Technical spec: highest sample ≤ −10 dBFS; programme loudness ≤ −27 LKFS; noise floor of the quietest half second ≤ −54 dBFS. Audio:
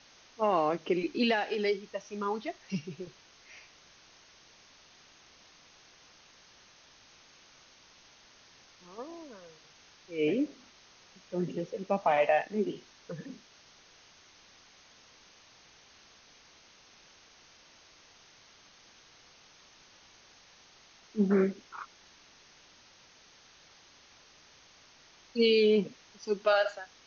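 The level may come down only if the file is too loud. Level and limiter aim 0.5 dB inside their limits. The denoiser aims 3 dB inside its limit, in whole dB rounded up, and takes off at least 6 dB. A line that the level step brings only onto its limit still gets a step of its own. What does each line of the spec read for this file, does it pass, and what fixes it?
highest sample −14.5 dBFS: in spec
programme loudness −30.5 LKFS: in spec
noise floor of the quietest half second −59 dBFS: in spec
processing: no processing needed

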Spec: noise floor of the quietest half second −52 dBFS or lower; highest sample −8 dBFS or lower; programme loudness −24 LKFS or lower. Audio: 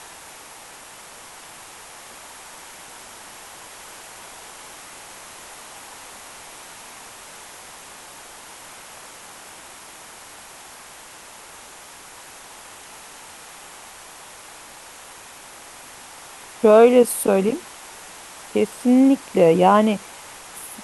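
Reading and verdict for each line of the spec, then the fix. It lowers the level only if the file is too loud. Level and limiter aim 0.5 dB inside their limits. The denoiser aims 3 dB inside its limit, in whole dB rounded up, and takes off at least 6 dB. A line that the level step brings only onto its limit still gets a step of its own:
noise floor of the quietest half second −42 dBFS: out of spec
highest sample −2.0 dBFS: out of spec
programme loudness −17.0 LKFS: out of spec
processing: broadband denoise 6 dB, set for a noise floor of −42 dBFS
level −7.5 dB

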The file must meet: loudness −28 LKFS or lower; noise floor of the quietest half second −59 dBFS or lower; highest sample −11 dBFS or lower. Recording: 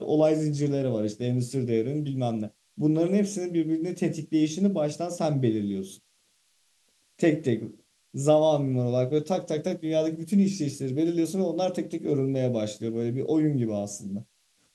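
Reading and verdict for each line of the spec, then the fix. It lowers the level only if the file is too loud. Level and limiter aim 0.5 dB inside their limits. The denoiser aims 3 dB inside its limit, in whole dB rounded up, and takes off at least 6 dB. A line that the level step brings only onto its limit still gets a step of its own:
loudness −26.5 LKFS: out of spec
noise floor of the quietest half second −68 dBFS: in spec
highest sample −9.0 dBFS: out of spec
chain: level −2 dB
brickwall limiter −11.5 dBFS

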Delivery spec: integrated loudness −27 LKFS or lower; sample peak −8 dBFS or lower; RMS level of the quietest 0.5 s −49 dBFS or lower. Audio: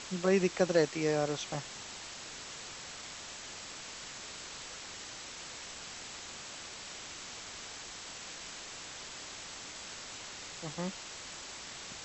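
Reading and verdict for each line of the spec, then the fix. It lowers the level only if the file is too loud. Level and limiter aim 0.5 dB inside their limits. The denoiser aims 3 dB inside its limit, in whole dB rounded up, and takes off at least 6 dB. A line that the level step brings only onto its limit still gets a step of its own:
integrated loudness −38.0 LKFS: in spec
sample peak −14.5 dBFS: in spec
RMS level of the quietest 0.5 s −46 dBFS: out of spec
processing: broadband denoise 6 dB, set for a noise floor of −46 dBFS

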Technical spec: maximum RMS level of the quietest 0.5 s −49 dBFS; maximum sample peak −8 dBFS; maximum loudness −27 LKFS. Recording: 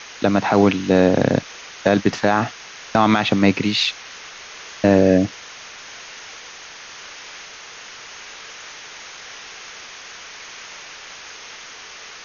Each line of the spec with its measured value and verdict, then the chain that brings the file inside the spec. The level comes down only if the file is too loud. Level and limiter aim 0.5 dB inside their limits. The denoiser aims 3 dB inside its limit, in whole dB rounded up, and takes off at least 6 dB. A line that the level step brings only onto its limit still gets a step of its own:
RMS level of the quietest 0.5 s −39 dBFS: out of spec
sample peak −3.0 dBFS: out of spec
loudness −18.0 LKFS: out of spec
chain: broadband denoise 6 dB, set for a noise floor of −39 dBFS
level −9.5 dB

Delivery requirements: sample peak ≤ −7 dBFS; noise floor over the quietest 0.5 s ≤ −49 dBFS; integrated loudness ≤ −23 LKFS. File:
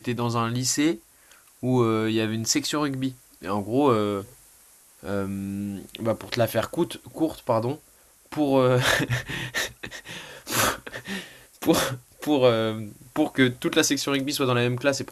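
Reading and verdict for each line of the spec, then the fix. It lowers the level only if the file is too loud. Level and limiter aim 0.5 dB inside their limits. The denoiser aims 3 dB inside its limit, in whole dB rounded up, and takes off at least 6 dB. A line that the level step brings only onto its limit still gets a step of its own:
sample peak −5.0 dBFS: out of spec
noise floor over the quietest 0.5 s −56 dBFS: in spec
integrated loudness −25.0 LKFS: in spec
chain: brickwall limiter −7.5 dBFS

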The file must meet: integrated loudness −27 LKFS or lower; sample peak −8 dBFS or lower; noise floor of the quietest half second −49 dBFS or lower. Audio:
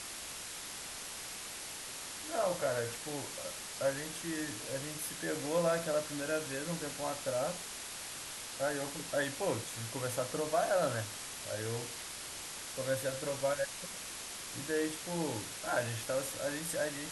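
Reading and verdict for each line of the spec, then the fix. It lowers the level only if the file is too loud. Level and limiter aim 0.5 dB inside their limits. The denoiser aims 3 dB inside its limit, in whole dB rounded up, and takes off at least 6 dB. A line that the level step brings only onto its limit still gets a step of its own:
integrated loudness −36.5 LKFS: in spec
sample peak −20.0 dBFS: in spec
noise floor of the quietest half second −44 dBFS: out of spec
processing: broadband denoise 8 dB, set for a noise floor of −44 dBFS

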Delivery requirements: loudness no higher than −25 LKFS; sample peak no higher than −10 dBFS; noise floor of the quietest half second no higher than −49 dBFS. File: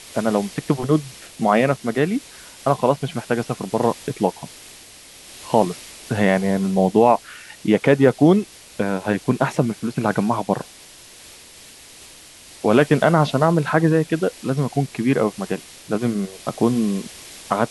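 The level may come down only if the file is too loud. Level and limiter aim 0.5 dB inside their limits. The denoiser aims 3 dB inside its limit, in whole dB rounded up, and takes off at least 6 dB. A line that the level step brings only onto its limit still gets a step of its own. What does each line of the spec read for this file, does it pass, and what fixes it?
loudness −20.5 LKFS: out of spec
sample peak −2.0 dBFS: out of spec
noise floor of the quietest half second −44 dBFS: out of spec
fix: broadband denoise 6 dB, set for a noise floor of −44 dBFS
level −5 dB
brickwall limiter −10.5 dBFS

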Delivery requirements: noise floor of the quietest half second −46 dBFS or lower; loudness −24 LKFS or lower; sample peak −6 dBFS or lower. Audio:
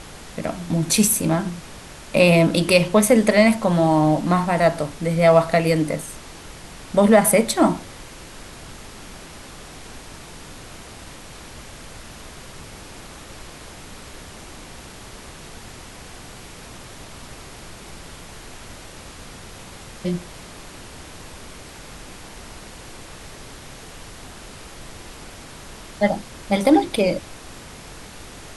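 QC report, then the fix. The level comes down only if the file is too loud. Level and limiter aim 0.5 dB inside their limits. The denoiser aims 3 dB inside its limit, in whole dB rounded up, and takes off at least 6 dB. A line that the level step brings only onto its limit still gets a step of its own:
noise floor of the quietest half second −39 dBFS: out of spec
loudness −18.5 LKFS: out of spec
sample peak −2.5 dBFS: out of spec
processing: broadband denoise 6 dB, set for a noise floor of −39 dBFS
level −6 dB

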